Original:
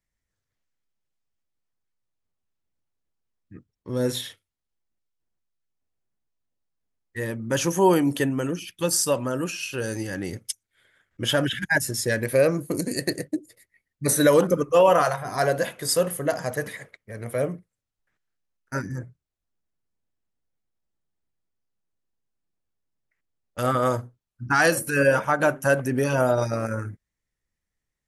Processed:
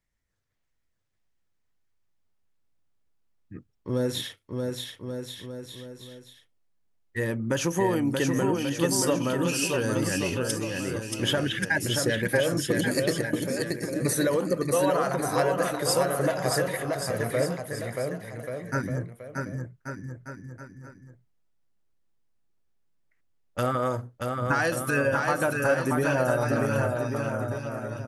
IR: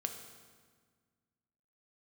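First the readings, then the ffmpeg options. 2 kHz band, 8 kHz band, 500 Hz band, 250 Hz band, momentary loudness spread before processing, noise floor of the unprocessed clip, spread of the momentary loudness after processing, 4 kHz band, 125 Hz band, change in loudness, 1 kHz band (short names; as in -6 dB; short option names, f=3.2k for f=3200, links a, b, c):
-2.0 dB, -2.5 dB, -3.0 dB, -0.5 dB, 14 LU, -85 dBFS, 14 LU, -0.5 dB, +0.5 dB, -3.5 dB, -3.0 dB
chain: -filter_complex "[0:a]highshelf=f=5k:g=-5,acompressor=threshold=-25dB:ratio=6,asplit=2[a][b];[b]aecho=0:1:630|1134|1537|1860|2118:0.631|0.398|0.251|0.158|0.1[c];[a][c]amix=inputs=2:normalize=0,volume=2.5dB"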